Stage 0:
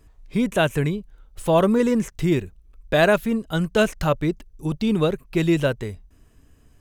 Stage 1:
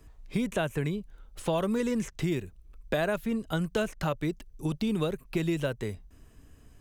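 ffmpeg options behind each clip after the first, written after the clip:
-filter_complex "[0:a]acrossover=split=110|2000|7300[s0][s1][s2][s3];[s0]acompressor=threshold=0.00631:ratio=4[s4];[s1]acompressor=threshold=0.0398:ratio=4[s5];[s2]acompressor=threshold=0.00708:ratio=4[s6];[s3]acompressor=threshold=0.00224:ratio=4[s7];[s4][s5][s6][s7]amix=inputs=4:normalize=0"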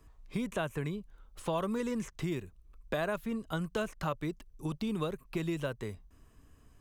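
-af "equalizer=f=1100:t=o:w=0.48:g=6.5,volume=0.531"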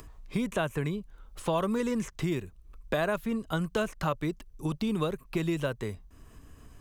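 -af "acompressor=mode=upward:threshold=0.00447:ratio=2.5,volume=1.68"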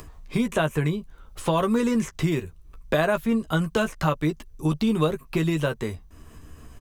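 -filter_complex "[0:a]asplit=2[s0][s1];[s1]adelay=13,volume=0.422[s2];[s0][s2]amix=inputs=2:normalize=0,volume=1.88"

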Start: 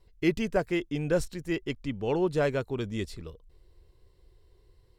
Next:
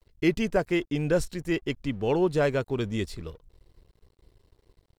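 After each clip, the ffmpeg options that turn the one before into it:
-filter_complex "[0:a]asplit=2[s0][s1];[s1]alimiter=limit=0.0668:level=0:latency=1:release=305,volume=0.708[s2];[s0][s2]amix=inputs=2:normalize=0,aeval=exprs='sgn(val(0))*max(abs(val(0))-0.00168,0)':c=same"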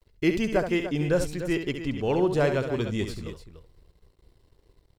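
-af "aecho=1:1:68|293:0.398|0.266"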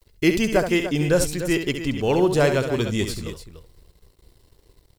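-af "highshelf=f=4800:g=11,volume=1.68"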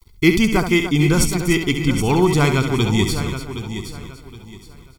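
-filter_complex "[0:a]aecho=1:1:0.9:0.83,asplit=2[s0][s1];[s1]aecho=0:1:769|1538|2307:0.299|0.0806|0.0218[s2];[s0][s2]amix=inputs=2:normalize=0,volume=1.41"

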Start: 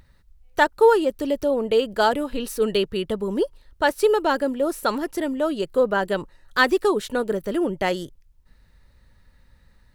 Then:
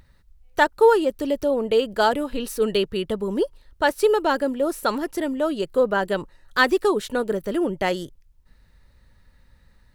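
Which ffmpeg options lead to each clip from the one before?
-af anull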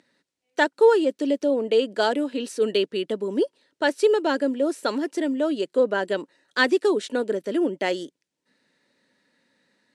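-af "highpass=f=230:w=0.5412,highpass=f=230:w=1.3066,equalizer=f=280:t=q:w=4:g=4,equalizer=f=830:t=q:w=4:g=-5,equalizer=f=1200:t=q:w=4:g=-8,lowpass=f=8900:w=0.5412,lowpass=f=8900:w=1.3066" -ar 32000 -c:a libmp3lame -b:a 80k

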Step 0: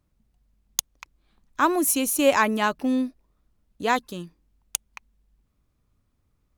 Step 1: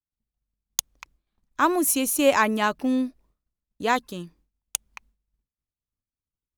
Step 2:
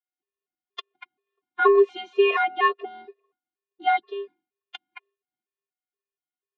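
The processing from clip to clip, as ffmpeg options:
-af "agate=range=0.0224:threshold=0.00224:ratio=3:detection=peak"
-af "afftfilt=real='hypot(re,im)*cos(PI*b)':imag='0':win_size=512:overlap=0.75,highpass=f=180:t=q:w=0.5412,highpass=f=180:t=q:w=1.307,lowpass=f=3300:t=q:w=0.5176,lowpass=f=3300:t=q:w=0.7071,lowpass=f=3300:t=q:w=1.932,afreqshift=55,afftfilt=real='re*gt(sin(2*PI*2.1*pts/sr)*(1-2*mod(floor(b*sr/1024/350),2)),0)':imag='im*gt(sin(2*PI*2.1*pts/sr)*(1-2*mod(floor(b*sr/1024/350),2)),0)':win_size=1024:overlap=0.75,volume=2.66"

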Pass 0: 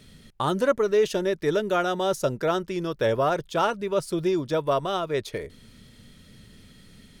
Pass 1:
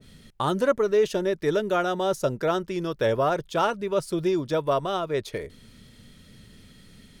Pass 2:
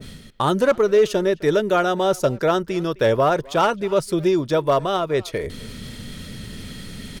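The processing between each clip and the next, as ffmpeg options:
-af "adynamicequalizer=threshold=0.02:dfrequency=1600:dqfactor=0.7:tfrequency=1600:tqfactor=0.7:attack=5:release=100:ratio=0.375:range=1.5:mode=cutabove:tftype=highshelf"
-filter_complex "[0:a]areverse,acompressor=mode=upward:threshold=0.0355:ratio=2.5,areverse,volume=5.62,asoftclip=hard,volume=0.178,asplit=2[s0][s1];[s1]adelay=260,highpass=300,lowpass=3400,asoftclip=type=hard:threshold=0.0668,volume=0.1[s2];[s0][s2]amix=inputs=2:normalize=0,volume=1.88"

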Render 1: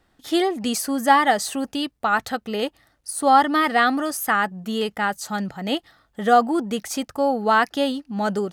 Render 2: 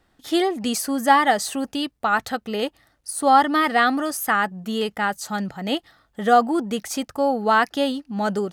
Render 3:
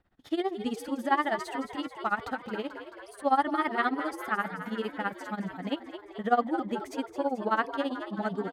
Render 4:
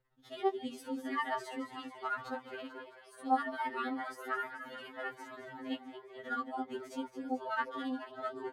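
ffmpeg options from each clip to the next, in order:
-af anull
-filter_complex "[0:a]bass=f=250:g=3,treble=f=4000:g=-13,tremolo=f=15:d=0.89,asplit=9[s0][s1][s2][s3][s4][s5][s6][s7][s8];[s1]adelay=218,afreqshift=66,volume=0.282[s9];[s2]adelay=436,afreqshift=132,volume=0.184[s10];[s3]adelay=654,afreqshift=198,volume=0.119[s11];[s4]adelay=872,afreqshift=264,volume=0.0776[s12];[s5]adelay=1090,afreqshift=330,volume=0.0501[s13];[s6]adelay=1308,afreqshift=396,volume=0.0327[s14];[s7]adelay=1526,afreqshift=462,volume=0.0211[s15];[s8]adelay=1744,afreqshift=528,volume=0.0138[s16];[s0][s9][s10][s11][s12][s13][s14][s15][s16]amix=inputs=9:normalize=0,volume=0.501"
-af "flanger=delay=9.5:depth=1.1:regen=-48:speed=1.3:shape=triangular,afftfilt=real='re*2.45*eq(mod(b,6),0)':imag='im*2.45*eq(mod(b,6),0)':win_size=2048:overlap=0.75"

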